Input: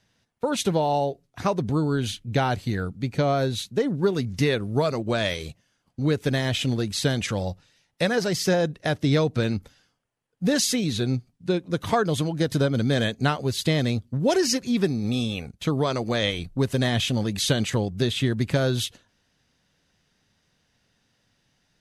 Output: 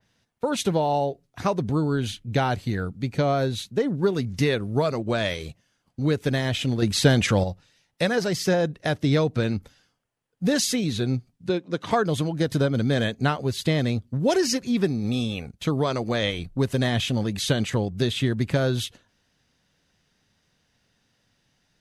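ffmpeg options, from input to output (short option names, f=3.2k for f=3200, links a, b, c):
-filter_complex "[0:a]asettb=1/sr,asplit=3[a][b][c];[a]atrim=end=6.824[d];[b]atrim=start=6.82:end=7.44,asetpts=PTS-STARTPTS,afade=t=in:d=0.004:c=qsin,afade=t=out:st=0.616:d=0.004:c=qsin,acontrast=68[e];[c]atrim=start=7.436[f];[d][e]acrossfade=d=0.004:c1=hsin:c2=qsin[g];[g][f]acrossfade=d=0.004:c1=qsin:c2=hsin,asettb=1/sr,asplit=3[h][i][j];[h]atrim=end=11.494[k];[i]atrim=start=11.49:end=11.91,asetpts=PTS-STARTPTS,afade=t=in:d=0.004:c=qsin,afade=t=out:st=0.416:d=0.004:c=qsin,highpass=190,lowpass=6.4k[l];[j]atrim=start=11.906[m];[k][l]acrossfade=d=0.004:c1=hsin:c2=qsin[n];[n][m]acrossfade=d=0.004:c1=qsin:c2=hsin,adynamicequalizer=threshold=0.00794:dfrequency=3000:dqfactor=0.7:tfrequency=3000:tqfactor=0.7:attack=5:release=100:ratio=0.375:range=2:mode=cutabove:tftype=highshelf"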